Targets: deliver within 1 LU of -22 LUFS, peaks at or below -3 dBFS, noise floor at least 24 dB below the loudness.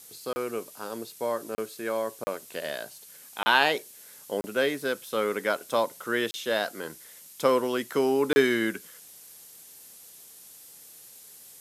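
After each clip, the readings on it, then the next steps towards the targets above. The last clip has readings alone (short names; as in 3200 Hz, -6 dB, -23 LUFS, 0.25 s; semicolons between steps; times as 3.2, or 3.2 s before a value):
dropouts 7; longest dropout 30 ms; noise floor -50 dBFS; noise floor target -52 dBFS; loudness -28.0 LUFS; peak -5.5 dBFS; loudness target -22.0 LUFS
-> interpolate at 0.33/1.55/2.24/3.43/4.41/6.31/8.33, 30 ms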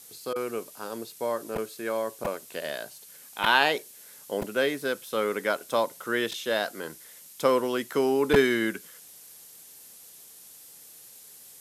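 dropouts 0; noise floor -50 dBFS; noise floor target -52 dBFS
-> noise print and reduce 6 dB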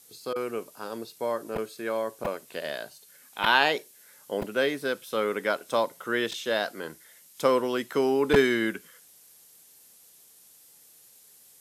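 noise floor -56 dBFS; loudness -28.0 LUFS; peak -5.0 dBFS; loudness target -22.0 LUFS
-> gain +6 dB; limiter -3 dBFS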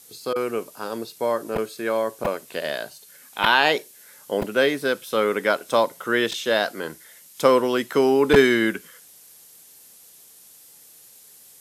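loudness -22.0 LUFS; peak -3.0 dBFS; noise floor -50 dBFS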